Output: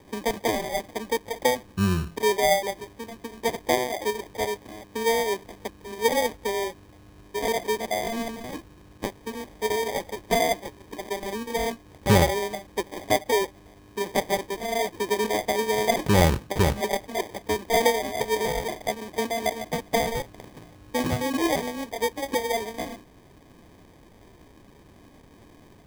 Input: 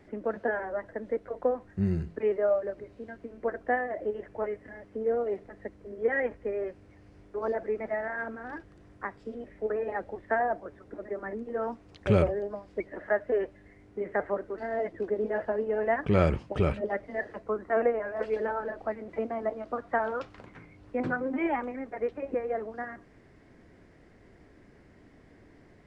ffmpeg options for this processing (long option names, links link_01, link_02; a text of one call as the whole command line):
ffmpeg -i in.wav -af "acrusher=samples=32:mix=1:aa=0.000001,volume=4.5dB" out.wav